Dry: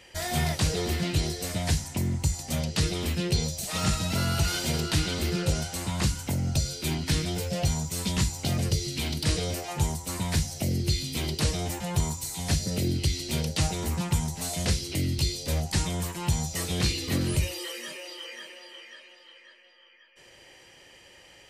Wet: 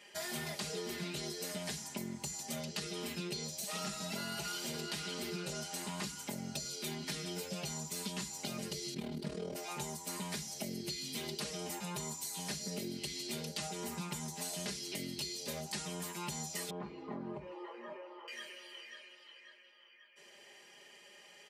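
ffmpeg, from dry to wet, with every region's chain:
-filter_complex "[0:a]asettb=1/sr,asplit=3[a][b][c];[a]atrim=end=8.944[d];[b]atrim=start=8.94:end=9.56,asetpts=PTS-STARTPTS,afade=t=in:d=0.004:c=qsin,afade=t=out:st=0.616:d=0.004:c=qsin,tremolo=f=39:d=0.824,tiltshelf=f=1.4k:g=9.5[e];[c]atrim=start=9.556[f];[d][e]acrossfade=d=0.004:c1=hsin:c2=qsin[g];[g][f]acrossfade=d=0.004:c1=qsin:c2=hsin,asettb=1/sr,asplit=3[h][i][j];[h]atrim=end=16.704[k];[i]atrim=start=16.7:end=18.28,asetpts=PTS-STARTPTS,afade=t=in:d=0.004:c=qsin,afade=t=out:st=1.576:d=0.004:c=qsin,acompressor=threshold=-33dB:ratio=2:attack=3.2:release=140:knee=1:detection=peak,lowpass=f=950:t=q:w=2.7[l];[j]atrim=start=18.276[m];[k][l]acrossfade=d=0.004:c1=hsin:c2=qsin[n];[n][m]acrossfade=d=0.004:c1=qsin:c2=hsin,highpass=220,aecho=1:1:4.9:0.85,acompressor=threshold=-30dB:ratio=6,volume=-7dB"

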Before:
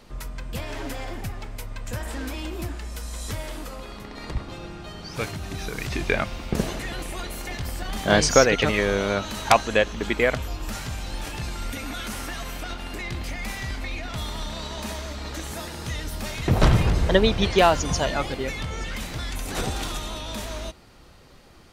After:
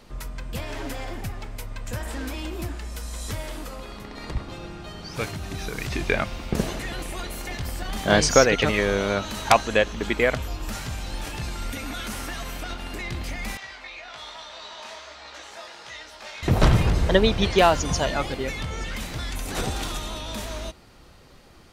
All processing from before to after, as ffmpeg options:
-filter_complex "[0:a]asettb=1/sr,asplit=3[a][b][c];[a]atrim=end=13.574[d];[b]atrim=start=13.57:end=16.43,asetpts=PTS-STARTPTS,afade=t=in:d=0.004:c=qsin,afade=t=out:st=2.856:d=0.004:c=qsin,acrossover=split=490 6700:gain=0.0708 1 0.0891[e][f][g];[e][f][g]amix=inputs=3:normalize=0,flanger=delay=15.5:depth=5.4:speed=1.2[h];[c]atrim=start=16.426[i];[d][h]acrossfade=d=0.004:c1=hsin:c2=qsin[j];[j][i]acrossfade=d=0.004:c1=qsin:c2=hsin"

